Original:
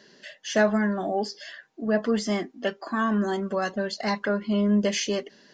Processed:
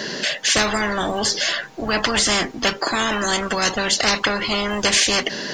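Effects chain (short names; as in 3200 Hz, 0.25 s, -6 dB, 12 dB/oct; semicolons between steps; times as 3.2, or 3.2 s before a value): 0.57–2.79 low shelf 140 Hz +9 dB; spectral compressor 4:1; gain +7.5 dB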